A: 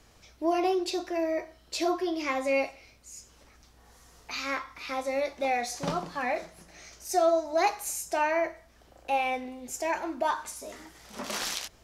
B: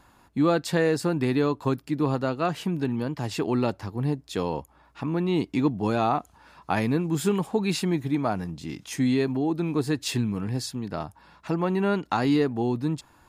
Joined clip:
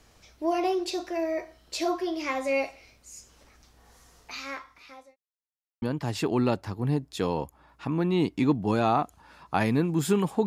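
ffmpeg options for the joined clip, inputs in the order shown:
-filter_complex "[0:a]apad=whole_dur=10.46,atrim=end=10.46,asplit=2[s0][s1];[s0]atrim=end=5.16,asetpts=PTS-STARTPTS,afade=t=out:st=4:d=1.16[s2];[s1]atrim=start=5.16:end=5.82,asetpts=PTS-STARTPTS,volume=0[s3];[1:a]atrim=start=2.98:end=7.62,asetpts=PTS-STARTPTS,afade=t=in:d=0.004:c=hsin[s4];[s2][s3][s4]concat=n=3:v=0:a=1"

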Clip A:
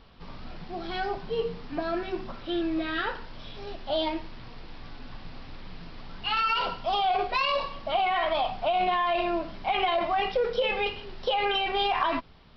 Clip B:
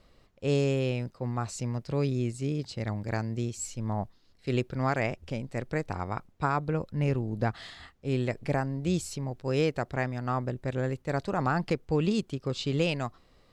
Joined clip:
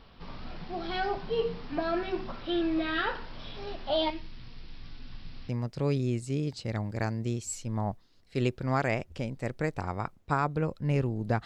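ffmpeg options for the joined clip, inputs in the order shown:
-filter_complex "[0:a]asettb=1/sr,asplit=3[s0][s1][s2];[s0]atrim=end=4.104[s3];[s1]atrim=start=4.1:end=5.49,asetpts=PTS-STARTPTS,afade=t=in:d=0.004:c=qsin,afade=t=out:st=1.386:d=0.004:c=qsin,equalizer=f=740:w=0.46:g=-13[s4];[s2]atrim=start=5.486[s5];[s3][s4]acrossfade=d=0.004:c1=hsin:c2=qsin[s6];[s6][s5]acrossfade=d=0.004:c1=qsin:c2=hsin,apad=whole_dur=11.45,atrim=end=11.45,atrim=end=5.492[s7];[1:a]atrim=start=1.608:end=7.57[s8];[s7][s8]acrossfade=d=0.004:c1=hsin:c2=hsin"

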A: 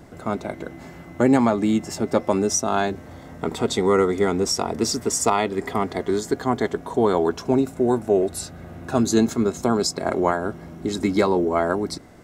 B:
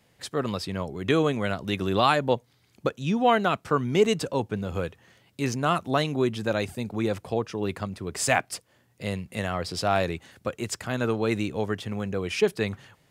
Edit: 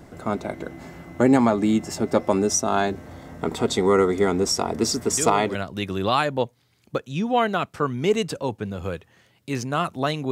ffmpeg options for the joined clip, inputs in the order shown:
-filter_complex "[1:a]asplit=2[s0][s1];[0:a]apad=whole_dur=10.31,atrim=end=10.31,atrim=end=5.552[s2];[s1]atrim=start=1.458:end=6.22[s3];[s0]atrim=start=1.01:end=1.46,asetpts=PTS-STARTPTS,volume=0.447,afade=t=in:d=0.004:c=hsin,afade=t=out:st=0.446:d=0.004:c=hsin,adelay=5100[s4];[s2][s3]acrossfade=d=0.004:c1=hsin:c2=hsin[s5];[s5][s4]amix=inputs=2:normalize=0"

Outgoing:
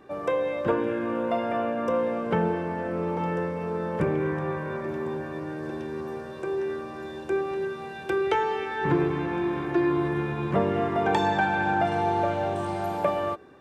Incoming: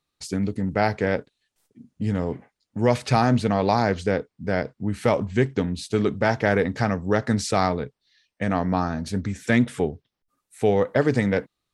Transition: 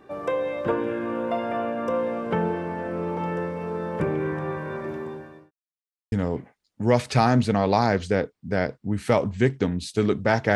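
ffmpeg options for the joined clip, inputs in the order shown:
-filter_complex "[0:a]apad=whole_dur=10.55,atrim=end=10.55,asplit=2[s0][s1];[s0]atrim=end=5.51,asetpts=PTS-STARTPTS,afade=t=out:st=4.88:d=0.63[s2];[s1]atrim=start=5.51:end=6.12,asetpts=PTS-STARTPTS,volume=0[s3];[1:a]atrim=start=2.08:end=6.51,asetpts=PTS-STARTPTS,afade=t=in:d=0.004:c=hsin[s4];[s2][s3][s4]concat=n=3:v=0:a=1"

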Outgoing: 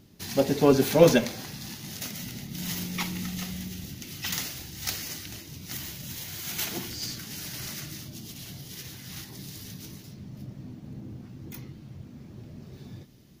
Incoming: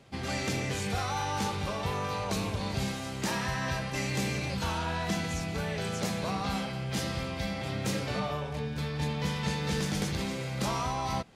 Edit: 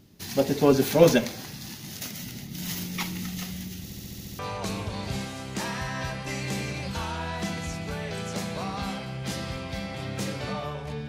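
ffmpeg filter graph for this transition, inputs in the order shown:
-filter_complex "[0:a]apad=whole_dur=11.08,atrim=end=11.08,asplit=8[s0][s1][s2][s3][s4][s5][s6][s7];[s0]atrim=end=3.902[s8];[s1]atrim=start=3.828:end=3.902[s9];[s2]atrim=start=3.828:end=3.902[s10];[s3]atrim=start=3.828:end=3.902[s11];[s4]atrim=start=3.828:end=3.902[s12];[s5]atrim=start=3.828:end=3.902[s13];[s6]atrim=start=3.828:end=3.902[s14];[s7]atrim=start=3.828:end=3.902[s15];[1:a]atrim=start=2.058:end=8.75[s16];[s8][s9]acrossfade=d=0.004:c1=hsin:c2=hsin[s17];[s17][s10]acrossfade=d=0.004:c1=hsin:c2=hsin[s18];[s18][s11]acrossfade=d=0.004:c1=hsin:c2=hsin[s19];[s19][s12]acrossfade=d=0.004:c1=hsin:c2=hsin[s20];[s20][s13]acrossfade=d=0.004:c1=hsin:c2=hsin[s21];[s21][s14]acrossfade=d=0.004:c1=hsin:c2=hsin[s22];[s22][s15]acrossfade=d=0.004:c1=hsin:c2=hsin[s23];[s23][s16]acrossfade=d=0.004:c1=hsin:c2=hsin"

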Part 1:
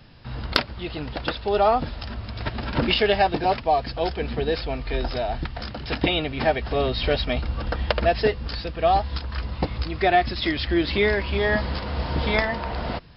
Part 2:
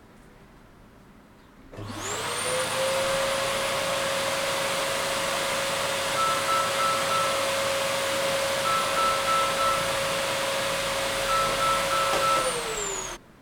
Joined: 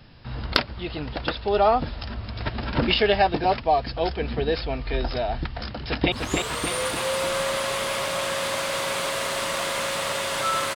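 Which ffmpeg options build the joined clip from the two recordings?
-filter_complex "[0:a]apad=whole_dur=10.75,atrim=end=10.75,atrim=end=6.122[s0];[1:a]atrim=start=1.858:end=6.49[s1];[s0][s1]acrossfade=d=0.004:c1=hsin:c2=hsin,asplit=2[s2][s3];[s3]afade=t=in:st=5.76:d=0.01,afade=t=out:st=6.12:d=0.01,aecho=0:1:300|600|900|1200|1500|1800|2100|2400:0.668344|0.367589|0.202174|0.111196|0.0611576|0.0336367|0.0185002|0.0101751[s4];[s2][s4]amix=inputs=2:normalize=0"

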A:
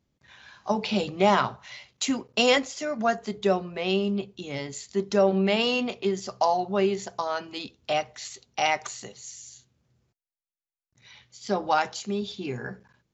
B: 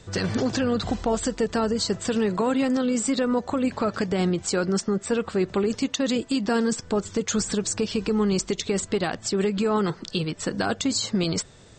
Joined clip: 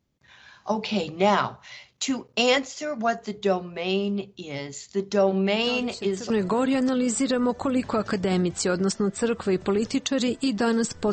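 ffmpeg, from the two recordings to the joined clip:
-filter_complex "[1:a]asplit=2[s0][s1];[0:a]apad=whole_dur=11.12,atrim=end=11.12,atrim=end=6.302[s2];[s1]atrim=start=2.178:end=7[s3];[s0]atrim=start=1.46:end=2.18,asetpts=PTS-STARTPTS,volume=0.237,afade=t=in:d=0.004:c=hsin,afade=t=out:st=0.716:d=0.004:c=hsin,adelay=5580[s4];[s2][s3]acrossfade=d=0.004:c1=hsin:c2=hsin[s5];[s5][s4]amix=inputs=2:normalize=0"

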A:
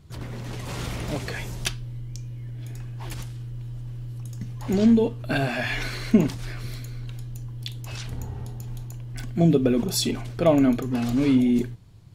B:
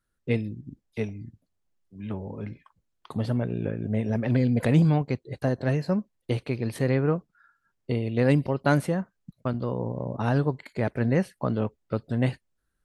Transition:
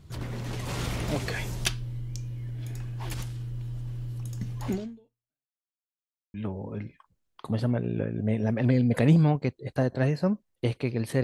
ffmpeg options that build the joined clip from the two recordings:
-filter_complex "[0:a]apad=whole_dur=11.23,atrim=end=11.23,asplit=2[s0][s1];[s0]atrim=end=5.56,asetpts=PTS-STARTPTS,afade=t=out:st=4.68:d=0.88:c=exp[s2];[s1]atrim=start=5.56:end=6.34,asetpts=PTS-STARTPTS,volume=0[s3];[1:a]atrim=start=2:end=6.89,asetpts=PTS-STARTPTS,afade=t=in:d=0.004:c=hsin[s4];[s2][s3][s4]concat=n=3:v=0:a=1"

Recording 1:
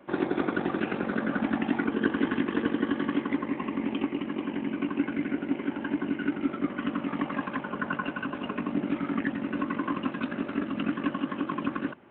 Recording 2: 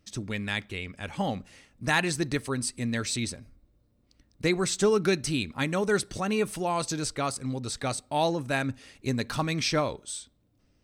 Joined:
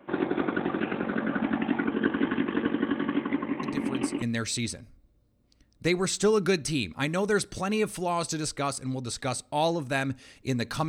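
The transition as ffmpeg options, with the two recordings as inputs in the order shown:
-filter_complex "[1:a]asplit=2[s0][s1];[0:a]apad=whole_dur=10.88,atrim=end=10.88,atrim=end=4.222[s2];[s1]atrim=start=2.808:end=9.47[s3];[s0]atrim=start=2.22:end=2.81,asetpts=PTS-STARTPTS,volume=0.376,afade=t=in:d=0.004:c=hsin,afade=t=out:st=0.586:d=0.004:c=hsin,adelay=3630[s4];[s2][s3]acrossfade=d=0.004:c1=hsin:c2=hsin[s5];[s5][s4]amix=inputs=2:normalize=0"

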